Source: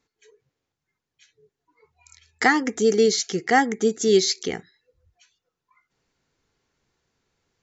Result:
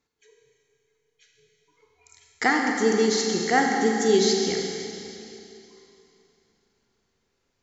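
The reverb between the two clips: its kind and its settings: Schroeder reverb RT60 2.9 s, combs from 32 ms, DRR 0.5 dB; gain -3.5 dB

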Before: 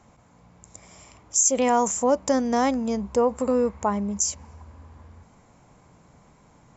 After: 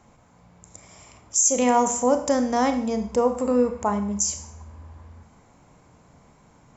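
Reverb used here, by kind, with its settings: Schroeder reverb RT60 0.56 s, combs from 25 ms, DRR 7.5 dB

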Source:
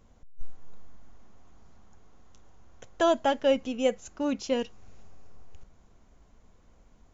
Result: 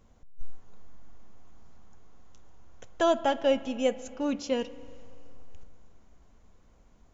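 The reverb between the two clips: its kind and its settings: spring tank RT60 2.3 s, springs 31/59 ms, chirp 35 ms, DRR 15.5 dB; gain -1 dB

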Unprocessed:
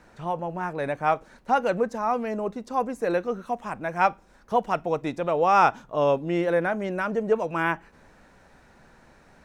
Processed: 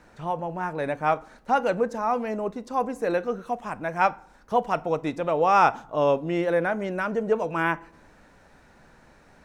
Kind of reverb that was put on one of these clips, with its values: FDN reverb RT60 0.59 s, low-frequency decay 1×, high-frequency decay 0.6×, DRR 16.5 dB

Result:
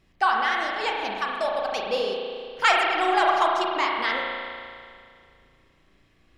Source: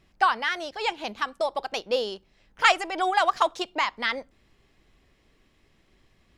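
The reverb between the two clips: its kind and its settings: spring tank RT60 2.2 s, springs 35 ms, chirp 30 ms, DRR -1.5 dB; gain -1.5 dB

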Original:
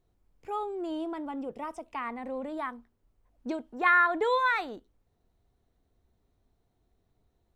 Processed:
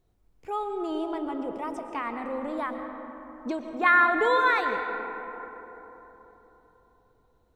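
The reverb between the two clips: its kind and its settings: digital reverb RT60 4 s, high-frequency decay 0.35×, pre-delay 80 ms, DRR 5.5 dB; gain +2.5 dB

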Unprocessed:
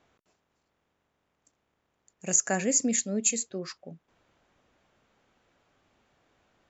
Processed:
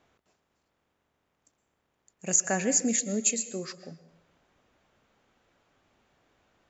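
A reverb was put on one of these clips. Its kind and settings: plate-style reverb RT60 0.83 s, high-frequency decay 0.8×, pre-delay 0.105 s, DRR 14 dB

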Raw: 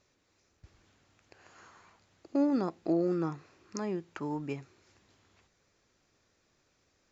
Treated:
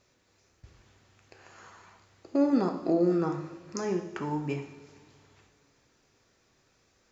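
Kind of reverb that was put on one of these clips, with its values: two-slope reverb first 0.75 s, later 2.9 s, DRR 3.5 dB; gain +3 dB

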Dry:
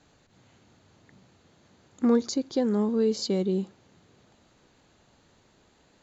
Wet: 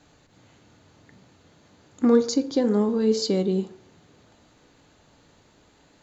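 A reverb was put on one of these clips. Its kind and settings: FDN reverb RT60 0.62 s, low-frequency decay 0.85×, high-frequency decay 0.5×, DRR 9 dB; gain +3.5 dB

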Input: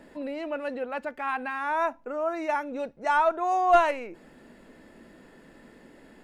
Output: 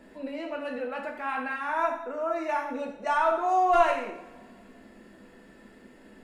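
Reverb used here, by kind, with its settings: two-slope reverb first 0.69 s, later 2.6 s, from -24 dB, DRR 0 dB; gain -3.5 dB

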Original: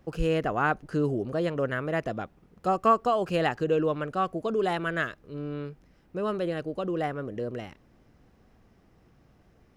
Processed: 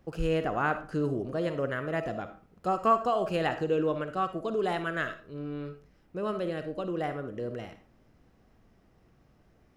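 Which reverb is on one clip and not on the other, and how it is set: digital reverb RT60 0.4 s, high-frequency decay 0.6×, pre-delay 15 ms, DRR 8.5 dB; gain -3 dB

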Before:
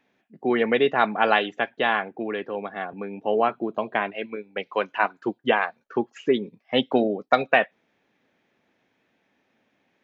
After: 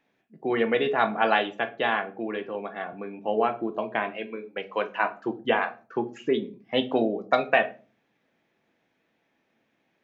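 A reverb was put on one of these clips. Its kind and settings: shoebox room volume 220 m³, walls furnished, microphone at 0.71 m; gain -3.5 dB

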